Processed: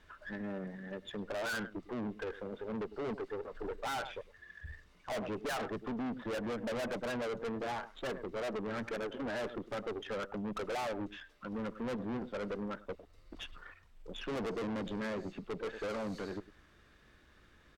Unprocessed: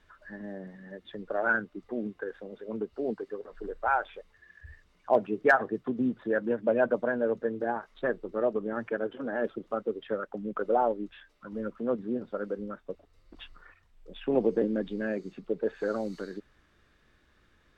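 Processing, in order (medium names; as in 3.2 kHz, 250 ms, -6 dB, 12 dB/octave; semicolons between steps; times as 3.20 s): delay 104 ms -22 dB; valve stage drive 39 dB, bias 0.45; trim +4 dB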